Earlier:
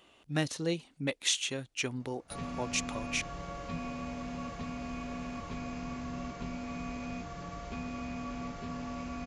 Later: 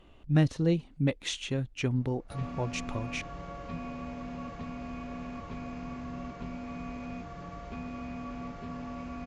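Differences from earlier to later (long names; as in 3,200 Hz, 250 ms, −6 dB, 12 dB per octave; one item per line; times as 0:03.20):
speech: remove high-pass filter 510 Hz 6 dB per octave
master: add low-pass filter 2,400 Hz 6 dB per octave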